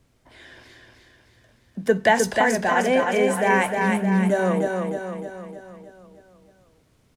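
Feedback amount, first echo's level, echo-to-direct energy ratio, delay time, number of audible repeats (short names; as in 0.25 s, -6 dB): 53%, -4.0 dB, -2.5 dB, 0.308 s, 6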